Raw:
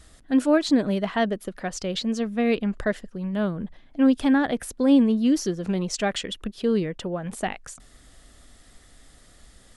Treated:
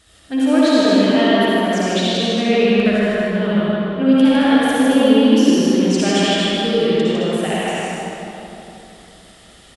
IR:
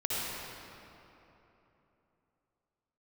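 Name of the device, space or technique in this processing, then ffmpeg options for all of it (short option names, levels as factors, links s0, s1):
stadium PA: -filter_complex "[0:a]highpass=f=150:p=1,equalizer=f=3100:t=o:w=0.84:g=6.5,aecho=1:1:154.5|218.7:0.631|0.355[s0];[1:a]atrim=start_sample=2205[s1];[s0][s1]afir=irnorm=-1:irlink=0"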